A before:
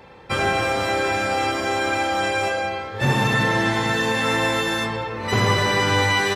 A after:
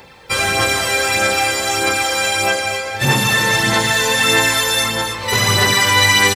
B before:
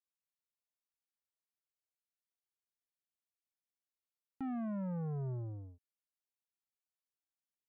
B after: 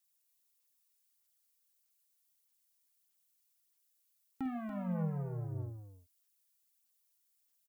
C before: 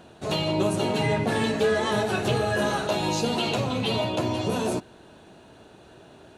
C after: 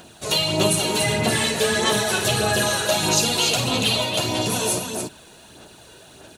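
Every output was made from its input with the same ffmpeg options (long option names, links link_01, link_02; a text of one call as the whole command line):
ffmpeg -i in.wav -af "aecho=1:1:49.56|285.7:0.316|0.501,crystalizer=i=5.5:c=0,aphaser=in_gain=1:out_gain=1:delay=2.1:decay=0.37:speed=1.6:type=sinusoidal,volume=-1.5dB" out.wav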